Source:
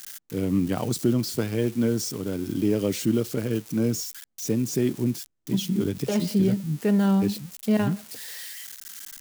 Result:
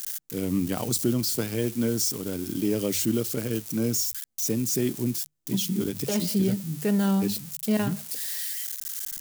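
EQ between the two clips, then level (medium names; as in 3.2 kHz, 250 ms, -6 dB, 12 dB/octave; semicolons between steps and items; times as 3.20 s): treble shelf 4.6 kHz +11 dB; hum notches 50/100/150 Hz; -2.5 dB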